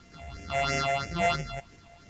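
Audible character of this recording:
a buzz of ramps at a fixed pitch in blocks of 64 samples
phaser sweep stages 6, 3 Hz, lowest notch 310–1,100 Hz
a quantiser's noise floor 10 bits, dither none
Ogg Vorbis

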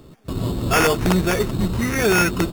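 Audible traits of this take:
aliases and images of a low sample rate 4,000 Hz, jitter 0%
AAC

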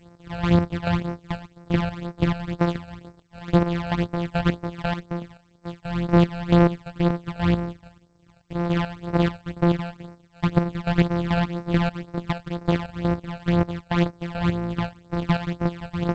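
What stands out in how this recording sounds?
a buzz of ramps at a fixed pitch in blocks of 256 samples
chopped level 2.3 Hz, depth 65%, duty 35%
phaser sweep stages 12, 2 Hz, lowest notch 330–3,200 Hz
G.722

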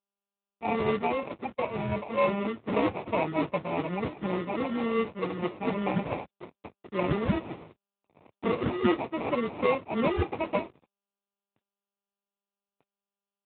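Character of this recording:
a quantiser's noise floor 8 bits, dither none
phaser sweep stages 6, 2.6 Hz, lowest notch 530–1,200 Hz
aliases and images of a low sample rate 1,600 Hz, jitter 0%
AMR narrowband

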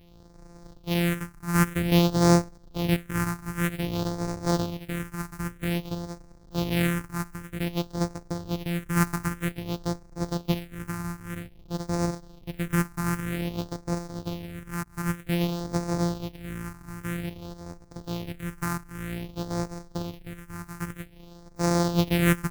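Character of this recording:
a buzz of ramps at a fixed pitch in blocks of 256 samples
phaser sweep stages 4, 0.52 Hz, lowest notch 540–3,000 Hz
AC-3

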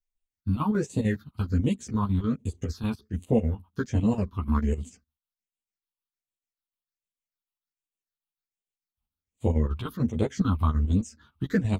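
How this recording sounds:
phaser sweep stages 6, 1.3 Hz, lowest notch 470–1,500 Hz
chopped level 6.7 Hz, depth 65%, duty 70%
a shimmering, thickened sound

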